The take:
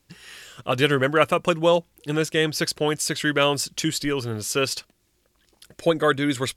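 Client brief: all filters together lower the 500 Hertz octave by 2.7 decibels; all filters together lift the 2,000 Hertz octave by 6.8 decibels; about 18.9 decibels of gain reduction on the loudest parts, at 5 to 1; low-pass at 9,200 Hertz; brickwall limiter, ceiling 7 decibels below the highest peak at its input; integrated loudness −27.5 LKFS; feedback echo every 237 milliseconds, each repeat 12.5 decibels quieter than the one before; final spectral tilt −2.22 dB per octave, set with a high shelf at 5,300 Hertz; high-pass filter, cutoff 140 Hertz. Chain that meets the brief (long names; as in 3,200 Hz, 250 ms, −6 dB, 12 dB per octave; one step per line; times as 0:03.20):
high-pass filter 140 Hz
low-pass filter 9,200 Hz
parametric band 500 Hz −3.5 dB
parametric band 2,000 Hz +8 dB
high-shelf EQ 5,300 Hz +8 dB
downward compressor 5 to 1, threshold −34 dBFS
brickwall limiter −24 dBFS
repeating echo 237 ms, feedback 24%, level −12.5 dB
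level +9 dB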